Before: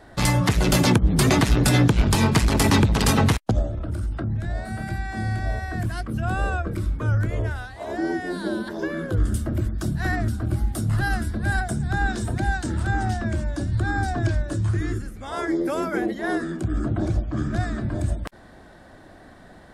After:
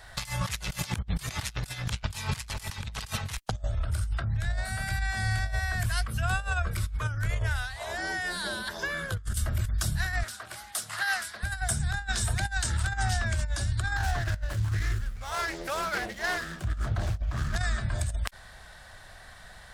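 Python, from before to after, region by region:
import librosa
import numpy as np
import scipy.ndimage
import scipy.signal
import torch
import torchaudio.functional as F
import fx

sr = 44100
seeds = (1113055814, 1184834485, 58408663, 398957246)

y = fx.chain(x, sr, fx.highpass(hz=490.0, slope=12),
    fx.high_shelf(hz=10000.0, db=-6.5),
    fx.doppler_dist(depth_ms=0.15), at=(10.23, 11.43))
y = fx.chain(y, sr, fx.median_filter(points=15),
    fx.doppler_dist(depth_ms=0.32), at=(13.96, 17.56))
y = fx.tone_stack(y, sr, knobs='10-0-10')
y = fx.over_compress(y, sr, threshold_db=-34.0, ratio=-0.5)
y = y * librosa.db_to_amplitude(5.5)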